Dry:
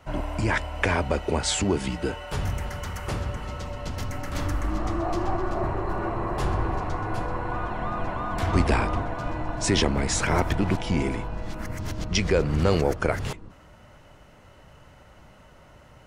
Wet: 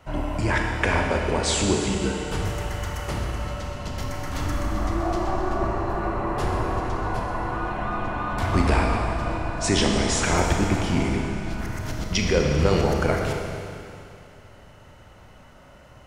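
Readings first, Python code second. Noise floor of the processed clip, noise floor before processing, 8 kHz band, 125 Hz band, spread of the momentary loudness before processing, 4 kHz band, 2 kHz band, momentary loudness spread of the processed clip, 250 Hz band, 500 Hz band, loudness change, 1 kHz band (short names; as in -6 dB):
-49 dBFS, -52 dBFS, +2.5 dB, +2.0 dB, 10 LU, +2.5 dB, +2.5 dB, 10 LU, +2.5 dB, +2.0 dB, +2.0 dB, +2.5 dB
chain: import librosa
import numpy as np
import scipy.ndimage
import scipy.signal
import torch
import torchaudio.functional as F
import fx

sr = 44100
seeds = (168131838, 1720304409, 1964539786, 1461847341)

y = fx.rev_schroeder(x, sr, rt60_s=2.6, comb_ms=27, drr_db=1.0)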